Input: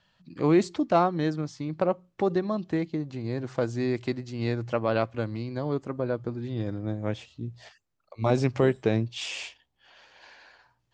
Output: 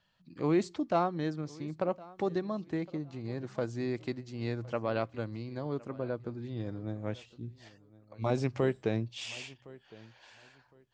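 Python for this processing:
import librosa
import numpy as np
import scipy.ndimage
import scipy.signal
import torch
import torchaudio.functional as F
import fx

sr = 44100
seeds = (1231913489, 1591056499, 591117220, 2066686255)

p1 = fx.high_shelf(x, sr, hz=4300.0, db=5.5, at=(1.87, 2.42))
p2 = p1 + fx.echo_feedback(p1, sr, ms=1062, feedback_pct=23, wet_db=-21.5, dry=0)
y = F.gain(torch.from_numpy(p2), -6.5).numpy()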